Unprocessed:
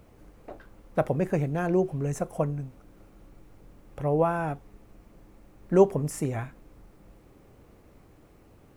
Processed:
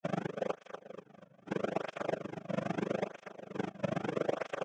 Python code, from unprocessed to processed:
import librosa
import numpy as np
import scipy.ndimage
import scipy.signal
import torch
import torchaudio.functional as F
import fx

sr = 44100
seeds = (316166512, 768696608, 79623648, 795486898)

p1 = fx.bin_compress(x, sr, power=0.4)
p2 = fx.high_shelf(p1, sr, hz=4000.0, db=-5.0)
p3 = 10.0 ** (-20.5 / 20.0) * np.tanh(p2 / 10.0 ** (-20.5 / 20.0))
p4 = p2 + (p3 * 10.0 ** (-4.0 / 20.0))
p5 = fx.gate_flip(p4, sr, shuts_db=-16.0, range_db=-40)
p6 = fx.granulator(p5, sr, seeds[0], grain_ms=53.0, per_s=13.0, spray_ms=100.0, spread_st=0)
p7 = p6 * (1.0 - 0.62 / 2.0 + 0.62 / 2.0 * np.cos(2.0 * np.pi * 8.4 * (np.arange(len(p6)) / sr)))
p8 = fx.stretch_vocoder(p7, sr, factor=0.53)
p9 = fx.cabinet(p8, sr, low_hz=150.0, low_slope=12, high_hz=5900.0, hz=(250.0, 380.0, 920.0, 2100.0, 3200.0), db=(-4, -10, -9, 3, 9))
p10 = p9 + fx.echo_feedback(p9, sr, ms=242, feedback_pct=50, wet_db=-8.0, dry=0)
p11 = fx.flanger_cancel(p10, sr, hz=0.78, depth_ms=2.6)
y = p11 * 10.0 ** (9.0 / 20.0)